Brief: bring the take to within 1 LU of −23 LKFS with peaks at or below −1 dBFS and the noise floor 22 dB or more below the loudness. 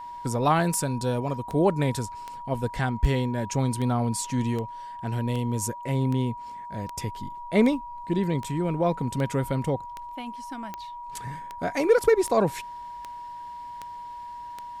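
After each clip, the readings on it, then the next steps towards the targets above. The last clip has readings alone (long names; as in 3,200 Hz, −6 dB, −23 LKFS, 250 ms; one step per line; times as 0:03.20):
number of clicks 19; interfering tone 960 Hz; level of the tone −36 dBFS; integrated loudness −27.0 LKFS; sample peak −8.0 dBFS; target loudness −23.0 LKFS
→ click removal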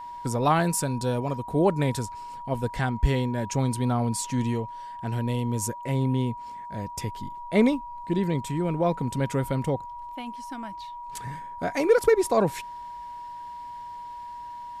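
number of clicks 0; interfering tone 960 Hz; level of the tone −36 dBFS
→ notch filter 960 Hz, Q 30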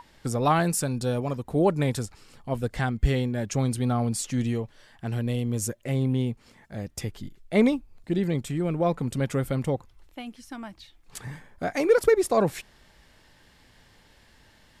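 interfering tone none found; integrated loudness −26.5 LKFS; sample peak −8.0 dBFS; target loudness −23.0 LKFS
→ level +3.5 dB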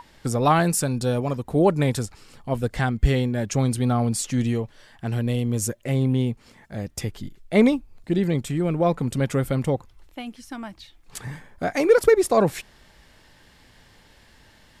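integrated loudness −23.0 LKFS; sample peak −4.5 dBFS; background noise floor −54 dBFS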